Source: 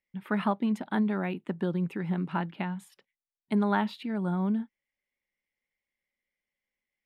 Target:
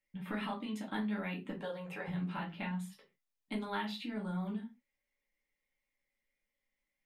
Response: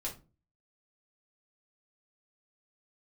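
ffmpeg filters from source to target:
-filter_complex "[0:a]asettb=1/sr,asplit=3[a][b][c];[a]atrim=end=1.594[d];[b]atrim=start=1.59:end=2.08,asetpts=PTS-STARTPTS,afade=t=in:d=0.004:c=qsin,afade=t=out:st=0.486:d=0.004:c=qsin,lowshelf=f=410:t=q:w=3:g=-14[e];[c]atrim=start=2.076[f];[d][e]acrossfade=d=0.004:c1=hsin:c2=qsin[g];[g][f]acrossfade=d=0.004:c1=qsin:c2=hsin,acrossover=split=2000[h][i];[h]acompressor=threshold=-38dB:ratio=6[j];[j][i]amix=inputs=2:normalize=0[k];[1:a]atrim=start_sample=2205,afade=t=out:st=0.21:d=0.01,atrim=end_sample=9702[l];[k][l]afir=irnorm=-1:irlink=0"

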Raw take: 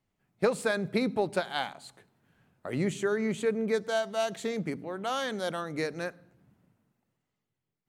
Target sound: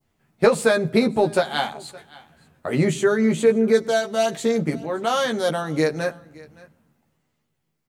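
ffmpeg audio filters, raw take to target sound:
-filter_complex "[0:a]asplit=2[a][b];[b]adelay=13,volume=-3dB[c];[a][c]amix=inputs=2:normalize=0,asplit=2[d][e];[e]aecho=0:1:568:0.0668[f];[d][f]amix=inputs=2:normalize=0,adynamicequalizer=threshold=0.00562:dfrequency=2100:dqfactor=0.81:tfrequency=2100:tqfactor=0.81:attack=5:release=100:ratio=0.375:range=2:mode=cutabove:tftype=bell,volume=8.5dB"

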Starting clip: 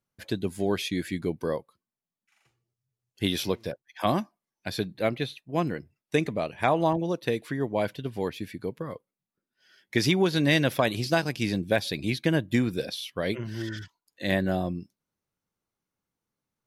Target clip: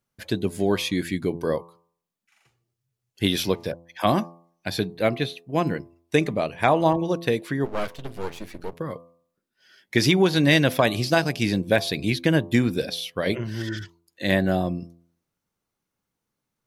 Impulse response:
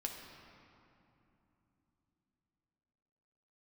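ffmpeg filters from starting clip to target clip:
-filter_complex "[0:a]bandreject=f=84.83:t=h:w=4,bandreject=f=169.66:t=h:w=4,bandreject=f=254.49:t=h:w=4,bandreject=f=339.32:t=h:w=4,bandreject=f=424.15:t=h:w=4,bandreject=f=508.98:t=h:w=4,bandreject=f=593.81:t=h:w=4,bandreject=f=678.64:t=h:w=4,bandreject=f=763.47:t=h:w=4,bandreject=f=848.3:t=h:w=4,bandreject=f=933.13:t=h:w=4,bandreject=f=1.01796k:t=h:w=4,bandreject=f=1.10279k:t=h:w=4,bandreject=f=1.18762k:t=h:w=4,asplit=3[a][b][c];[a]afade=t=out:st=7.64:d=0.02[d];[b]aeval=exprs='max(val(0),0)':c=same,afade=t=in:st=7.64:d=0.02,afade=t=out:st=8.73:d=0.02[e];[c]afade=t=in:st=8.73:d=0.02[f];[d][e][f]amix=inputs=3:normalize=0,volume=4.5dB"

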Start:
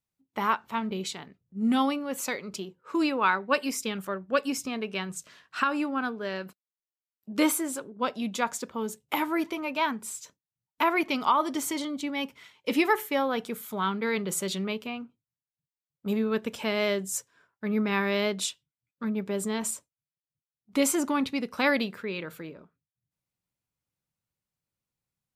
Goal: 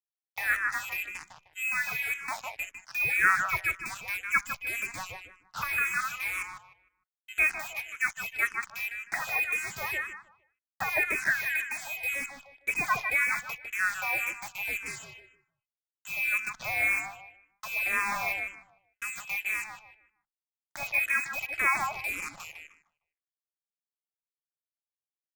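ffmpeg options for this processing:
-filter_complex "[0:a]aeval=exprs='val(0)+0.00562*sin(2*PI*750*n/s)':c=same,acrossover=split=260[a][b];[a]acompressor=threshold=-51dB:ratio=4[c];[c][b]amix=inputs=2:normalize=0,lowpass=f=2.4k:t=q:w=0.5098,lowpass=f=2.4k:t=q:w=0.6013,lowpass=f=2.4k:t=q:w=0.9,lowpass=f=2.4k:t=q:w=2.563,afreqshift=-2800,acrusher=bits=5:mix=0:aa=0.5,equalizer=f=250:t=o:w=1:g=-6,equalizer=f=500:t=o:w=1:g=-10,equalizer=f=2k:t=o:w=1:g=-4,asplit=2[d][e];[e]adelay=153,lowpass=f=2.2k:p=1,volume=-3.5dB,asplit=2[f][g];[g]adelay=153,lowpass=f=2.2k:p=1,volume=0.31,asplit=2[h][i];[i]adelay=153,lowpass=f=2.2k:p=1,volume=0.31,asplit=2[j][k];[k]adelay=153,lowpass=f=2.2k:p=1,volume=0.31[l];[f][h][j][l]amix=inputs=4:normalize=0[m];[d][m]amix=inputs=2:normalize=0,asplit=2[n][o];[o]afreqshift=-1.9[p];[n][p]amix=inputs=2:normalize=1,volume=5dB"

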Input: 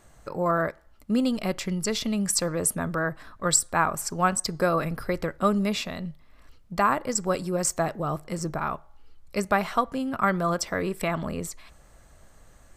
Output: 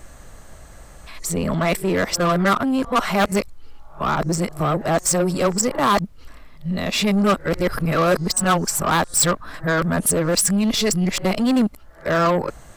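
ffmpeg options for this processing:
-af "areverse,aeval=exprs='0.473*sin(PI/2*2.51*val(0)/0.473)':c=same,aeval=exprs='0.473*(cos(1*acos(clip(val(0)/0.473,-1,1)))-cos(1*PI/2))+0.0531*(cos(5*acos(clip(val(0)/0.473,-1,1)))-cos(5*PI/2))':c=same,volume=-4.5dB"

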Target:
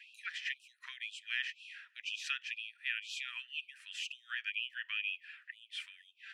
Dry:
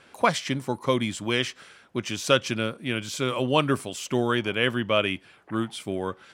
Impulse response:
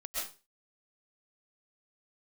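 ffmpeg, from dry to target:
-filter_complex "[0:a]acompressor=threshold=-33dB:ratio=6,asplit=3[a][b][c];[a]bandpass=f=530:t=q:w=8,volume=0dB[d];[b]bandpass=f=1.84k:t=q:w=8,volume=-6dB[e];[c]bandpass=f=2.48k:t=q:w=8,volume=-9dB[f];[d][e][f]amix=inputs=3:normalize=0,afftfilt=real='re*gte(b*sr/1024,940*pow(2500/940,0.5+0.5*sin(2*PI*2*pts/sr)))':imag='im*gte(b*sr/1024,940*pow(2500/940,0.5+0.5*sin(2*PI*2*pts/sr)))':win_size=1024:overlap=0.75,volume=16dB"

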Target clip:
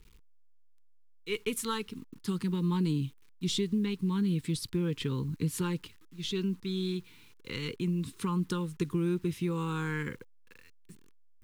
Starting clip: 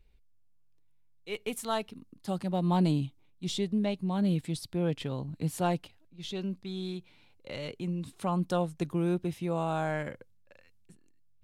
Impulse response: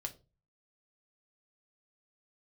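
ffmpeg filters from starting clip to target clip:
-af "equalizer=f=820:t=o:w=0.48:g=-6.5,acompressor=threshold=-31dB:ratio=4,acrusher=bits=10:mix=0:aa=0.000001,asuperstop=centerf=650:order=8:qfactor=1.7,volume=4.5dB"

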